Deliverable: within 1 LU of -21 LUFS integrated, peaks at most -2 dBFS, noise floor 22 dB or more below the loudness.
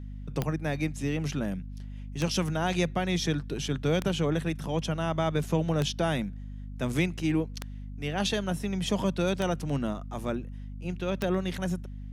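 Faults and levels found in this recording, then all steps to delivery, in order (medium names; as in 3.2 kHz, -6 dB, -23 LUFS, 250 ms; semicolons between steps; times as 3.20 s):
clicks found 7; hum 50 Hz; highest harmonic 250 Hz; hum level -37 dBFS; loudness -30.0 LUFS; peak level -12.5 dBFS; loudness target -21.0 LUFS
-> de-click; hum notches 50/100/150/200/250 Hz; trim +9 dB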